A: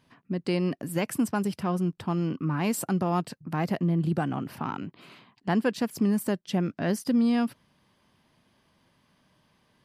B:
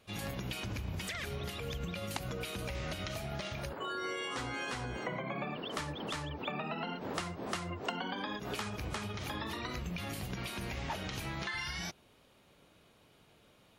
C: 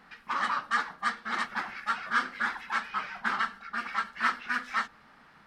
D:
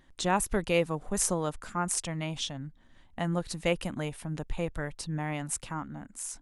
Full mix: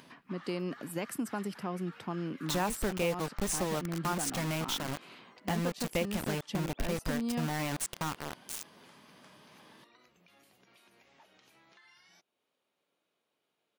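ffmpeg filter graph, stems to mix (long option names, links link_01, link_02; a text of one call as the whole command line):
ffmpeg -i stem1.wav -i stem2.wav -i stem3.wav -i stem4.wav -filter_complex "[0:a]highpass=190,acompressor=mode=upward:threshold=-39dB:ratio=2.5,volume=-5.5dB[link_01];[1:a]highpass=290,acompressor=threshold=-51dB:ratio=1.5,adelay=300,volume=-17dB[link_02];[2:a]equalizer=frequency=2700:width=0.88:gain=5.5,alimiter=level_in=1dB:limit=-24dB:level=0:latency=1:release=37,volume=-1dB,volume=-19dB[link_03];[3:a]highshelf=frequency=9000:gain=-8.5,acontrast=39,acrusher=bits=4:mix=0:aa=0.000001,adelay=2300,volume=-2.5dB[link_04];[link_01][link_02][link_03][link_04]amix=inputs=4:normalize=0,acompressor=threshold=-31dB:ratio=2.5" out.wav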